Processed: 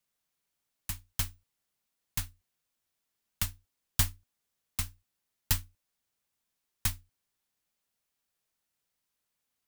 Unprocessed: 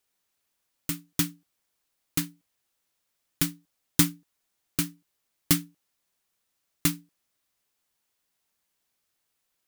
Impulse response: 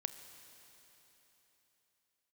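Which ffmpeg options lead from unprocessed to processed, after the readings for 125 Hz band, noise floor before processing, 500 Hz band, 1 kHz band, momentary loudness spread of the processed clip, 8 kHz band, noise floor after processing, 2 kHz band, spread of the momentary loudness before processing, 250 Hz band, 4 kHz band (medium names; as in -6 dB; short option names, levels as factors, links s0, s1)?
-4.0 dB, -79 dBFS, -12.5 dB, -4.0 dB, 11 LU, -5.5 dB, -84 dBFS, -5.5 dB, 11 LU, -20.0 dB, -5.5 dB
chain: -af "afreqshift=-260,volume=0.531"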